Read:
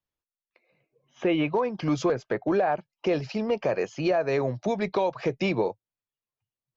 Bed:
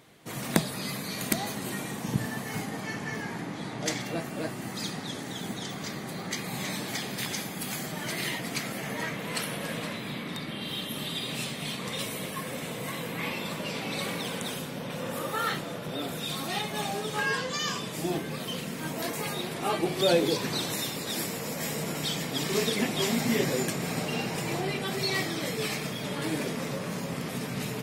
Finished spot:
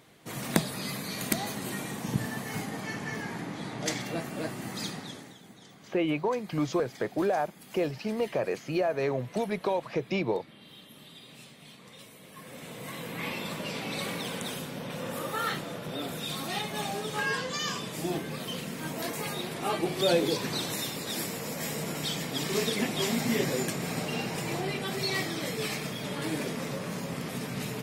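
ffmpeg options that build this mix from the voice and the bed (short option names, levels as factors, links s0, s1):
-filter_complex "[0:a]adelay=4700,volume=0.668[s0];[1:a]volume=5.01,afade=t=out:st=4.83:d=0.55:silence=0.16788,afade=t=in:st=12.23:d=1.1:silence=0.177828[s1];[s0][s1]amix=inputs=2:normalize=0"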